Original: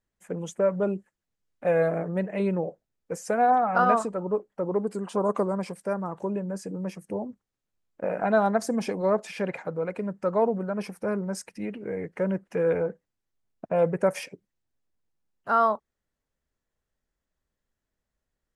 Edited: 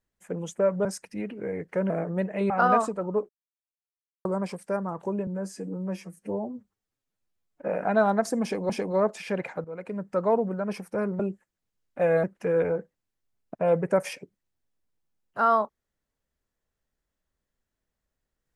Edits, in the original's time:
0.85–1.89 s: swap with 11.29–12.34 s
2.49–3.67 s: delete
4.46–5.42 s: mute
6.44–8.05 s: stretch 1.5×
8.79–9.06 s: loop, 2 plays
9.74–10.17 s: fade in, from -13 dB

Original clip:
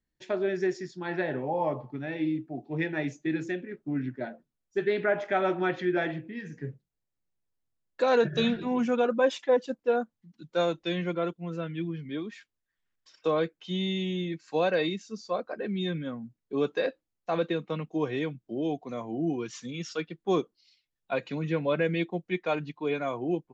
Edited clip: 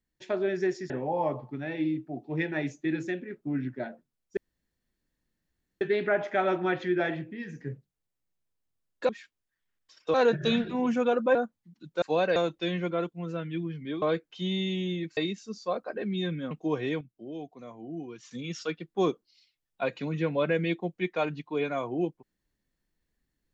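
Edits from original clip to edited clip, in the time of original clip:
0.90–1.31 s: delete
4.78 s: insert room tone 1.44 s
9.27–9.93 s: delete
12.26–13.31 s: move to 8.06 s
14.46–14.80 s: move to 10.60 s
16.14–17.81 s: delete
18.31–19.61 s: gain -9 dB

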